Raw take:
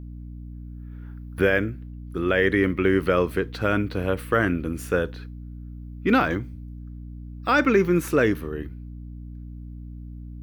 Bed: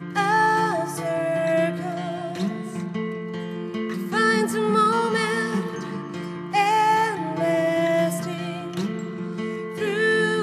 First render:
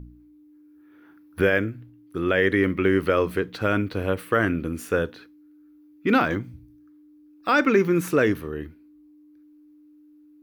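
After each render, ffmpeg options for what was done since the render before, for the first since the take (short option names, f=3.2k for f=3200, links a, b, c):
-af "bandreject=f=60:t=h:w=4,bandreject=f=120:t=h:w=4,bandreject=f=180:t=h:w=4,bandreject=f=240:t=h:w=4"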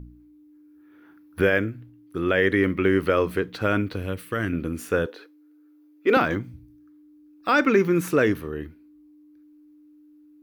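-filter_complex "[0:a]asettb=1/sr,asplit=3[a][b][c];[a]atrim=end=3.964[d];[b]atrim=start=3.96:end=4.53,asetpts=PTS-STARTPTS,afade=t=in:d=0.004:c=qsin,afade=t=out:st=0.566:d=0.004:c=qsin,equalizer=f=780:w=0.49:g=-9.5[e];[c]atrim=start=4.526[f];[d][e]acrossfade=d=0.004:c1=hsin:c2=qsin[g];[g][f]acrossfade=d=0.004:c1=qsin:c2=hsin,asettb=1/sr,asplit=3[h][i][j];[h]atrim=end=5.064[k];[i]atrim=start=5.06:end=6.17,asetpts=PTS-STARTPTS,afade=t=in:d=0.004:c=qsin,afade=t=out:st=1.106:d=0.004:c=qsin,highpass=f=440:t=q:w=2.3[l];[j]atrim=start=6.166[m];[k][l]acrossfade=d=0.004:c1=hsin:c2=qsin[n];[n][m]acrossfade=d=0.004:c1=qsin:c2=hsin"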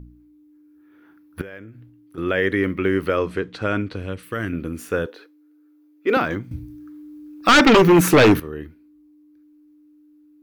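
-filter_complex "[0:a]asettb=1/sr,asplit=3[a][b][c];[a]atrim=end=1.414[d];[b]atrim=start=1.41:end=2.18,asetpts=PTS-STARTPTS,afade=t=in:d=0.004:c=qsin,afade=t=out:st=0.766:d=0.004:c=qsin,acompressor=threshold=-40dB:ratio=3:attack=3.2:release=140:knee=1:detection=peak[e];[c]atrim=start=2.176[f];[d][e]acrossfade=d=0.004:c1=hsin:c2=qsin[g];[g][f]acrossfade=d=0.004:c1=qsin:c2=hsin,asettb=1/sr,asplit=3[h][i][j];[h]atrim=end=3.174[k];[i]atrim=start=3.17:end=4.23,asetpts=PTS-STARTPTS,afade=t=in:d=0.004:c=qsin,afade=t=out:st=1.056:d=0.004:c=qsin,lowpass=f=9.1k:w=0.5412,lowpass=f=9.1k:w=1.3066[l];[j]atrim=start=4.226[m];[k][l]acrossfade=d=0.004:c1=hsin:c2=qsin[n];[n][m]acrossfade=d=0.004:c1=qsin:c2=hsin,asettb=1/sr,asplit=3[o][p][q];[o]atrim=end=6.514[r];[p]atrim=start=6.51:end=8.4,asetpts=PTS-STARTPTS,afade=t=in:d=0.004:c=qsin,afade=t=out:st=1.886:d=0.004:c=qsin,aeval=exprs='0.398*sin(PI/2*2.82*val(0)/0.398)':c=same[s];[q]atrim=start=8.396[t];[r][s]acrossfade=d=0.004:c1=hsin:c2=qsin[u];[u][t]acrossfade=d=0.004:c1=qsin:c2=hsin"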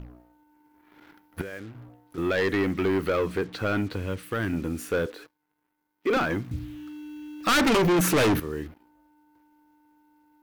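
-af "acrusher=bits=7:mix=0:aa=0.5,asoftclip=type=tanh:threshold=-19dB"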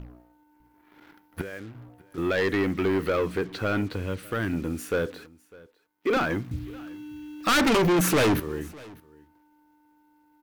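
-af "aecho=1:1:602:0.0708"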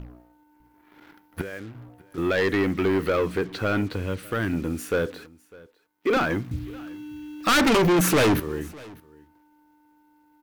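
-af "volume=2dB"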